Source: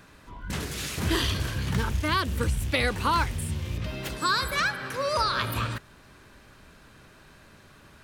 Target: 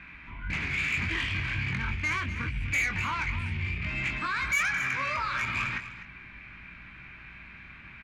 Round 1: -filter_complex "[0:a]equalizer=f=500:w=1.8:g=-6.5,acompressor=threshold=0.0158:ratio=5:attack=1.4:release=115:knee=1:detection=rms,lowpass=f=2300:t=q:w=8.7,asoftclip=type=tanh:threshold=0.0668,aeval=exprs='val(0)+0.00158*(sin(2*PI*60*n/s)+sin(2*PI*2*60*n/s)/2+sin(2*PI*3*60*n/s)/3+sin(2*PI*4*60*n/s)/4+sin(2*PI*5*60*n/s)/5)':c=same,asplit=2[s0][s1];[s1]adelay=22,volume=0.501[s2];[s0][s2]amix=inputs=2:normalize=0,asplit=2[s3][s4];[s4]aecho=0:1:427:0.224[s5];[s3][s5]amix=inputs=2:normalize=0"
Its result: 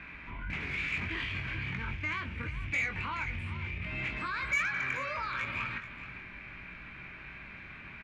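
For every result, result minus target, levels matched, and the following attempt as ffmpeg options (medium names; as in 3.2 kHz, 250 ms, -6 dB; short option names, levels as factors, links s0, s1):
echo 178 ms late; compression: peak gain reduction +7.5 dB; 500 Hz band +5.0 dB
-filter_complex "[0:a]equalizer=f=500:w=1.8:g=-6.5,acompressor=threshold=0.0158:ratio=5:attack=1.4:release=115:knee=1:detection=rms,lowpass=f=2300:t=q:w=8.7,asoftclip=type=tanh:threshold=0.0668,aeval=exprs='val(0)+0.00158*(sin(2*PI*60*n/s)+sin(2*PI*2*60*n/s)/2+sin(2*PI*3*60*n/s)/3+sin(2*PI*4*60*n/s)/4+sin(2*PI*5*60*n/s)/5)':c=same,asplit=2[s0][s1];[s1]adelay=22,volume=0.501[s2];[s0][s2]amix=inputs=2:normalize=0,asplit=2[s3][s4];[s4]aecho=0:1:249:0.224[s5];[s3][s5]amix=inputs=2:normalize=0"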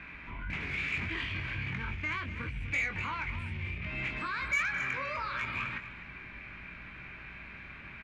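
compression: peak gain reduction +7.5 dB; 500 Hz band +5.0 dB
-filter_complex "[0:a]equalizer=f=500:w=1.8:g=-6.5,acompressor=threshold=0.0398:ratio=5:attack=1.4:release=115:knee=1:detection=rms,lowpass=f=2300:t=q:w=8.7,asoftclip=type=tanh:threshold=0.0668,aeval=exprs='val(0)+0.00158*(sin(2*PI*60*n/s)+sin(2*PI*2*60*n/s)/2+sin(2*PI*3*60*n/s)/3+sin(2*PI*4*60*n/s)/4+sin(2*PI*5*60*n/s)/5)':c=same,asplit=2[s0][s1];[s1]adelay=22,volume=0.501[s2];[s0][s2]amix=inputs=2:normalize=0,asplit=2[s3][s4];[s4]aecho=0:1:249:0.224[s5];[s3][s5]amix=inputs=2:normalize=0"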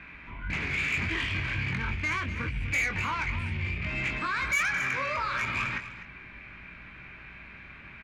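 500 Hz band +5.0 dB
-filter_complex "[0:a]equalizer=f=500:w=1.8:g=-16.5,acompressor=threshold=0.0398:ratio=5:attack=1.4:release=115:knee=1:detection=rms,lowpass=f=2300:t=q:w=8.7,asoftclip=type=tanh:threshold=0.0668,aeval=exprs='val(0)+0.00158*(sin(2*PI*60*n/s)+sin(2*PI*2*60*n/s)/2+sin(2*PI*3*60*n/s)/3+sin(2*PI*4*60*n/s)/4+sin(2*PI*5*60*n/s)/5)':c=same,asplit=2[s0][s1];[s1]adelay=22,volume=0.501[s2];[s0][s2]amix=inputs=2:normalize=0,asplit=2[s3][s4];[s4]aecho=0:1:249:0.224[s5];[s3][s5]amix=inputs=2:normalize=0"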